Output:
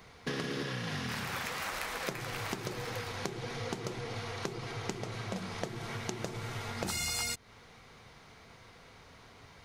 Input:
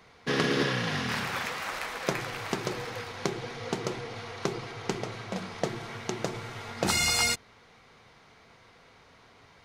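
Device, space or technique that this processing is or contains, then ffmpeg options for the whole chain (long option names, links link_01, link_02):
ASMR close-microphone chain: -af "lowshelf=frequency=150:gain=7,acompressor=threshold=-34dB:ratio=6,highshelf=frequency=7400:gain=8"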